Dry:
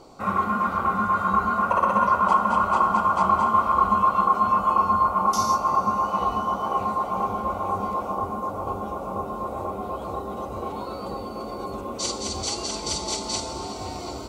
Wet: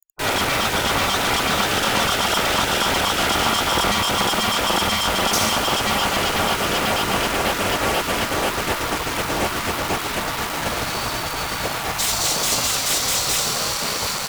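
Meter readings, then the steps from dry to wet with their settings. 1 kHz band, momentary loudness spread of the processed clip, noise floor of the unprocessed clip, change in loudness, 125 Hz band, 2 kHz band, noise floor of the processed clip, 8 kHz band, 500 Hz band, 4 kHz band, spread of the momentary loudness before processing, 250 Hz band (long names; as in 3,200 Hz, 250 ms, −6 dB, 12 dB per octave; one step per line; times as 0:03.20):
−2.0 dB, 5 LU, −34 dBFS, +4.0 dB, +6.5 dB, +12.5 dB, −26 dBFS, +12.5 dB, +6.0 dB, +16.0 dB, 13 LU, +4.0 dB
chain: bit-depth reduction 8 bits, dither none
fuzz pedal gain 36 dB, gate −39 dBFS
gate on every frequency bin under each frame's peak −10 dB weak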